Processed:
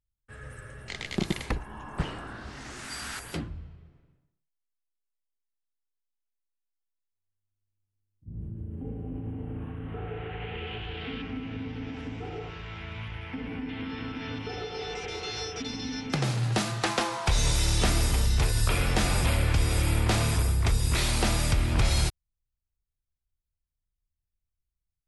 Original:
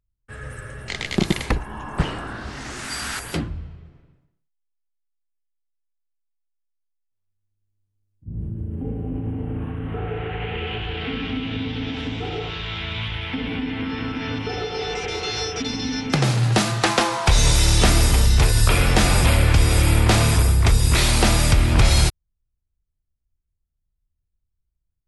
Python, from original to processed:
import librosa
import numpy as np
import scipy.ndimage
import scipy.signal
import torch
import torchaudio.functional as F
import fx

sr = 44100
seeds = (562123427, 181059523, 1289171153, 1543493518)

y = fx.peak_eq(x, sr, hz=3600.0, db=-12.5, octaves=0.67, at=(11.22, 13.69))
y = y * librosa.db_to_amplitude(-8.5)